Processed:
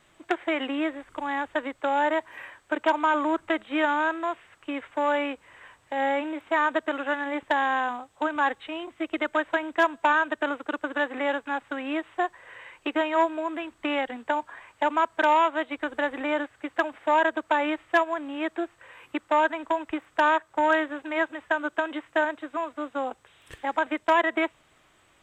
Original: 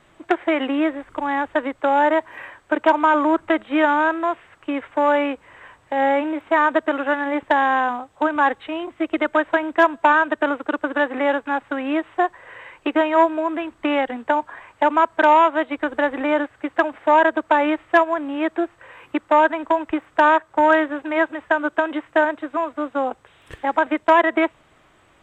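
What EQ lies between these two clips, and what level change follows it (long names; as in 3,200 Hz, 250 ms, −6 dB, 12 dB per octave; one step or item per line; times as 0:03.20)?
high-shelf EQ 2,600 Hz +9.5 dB
−8.0 dB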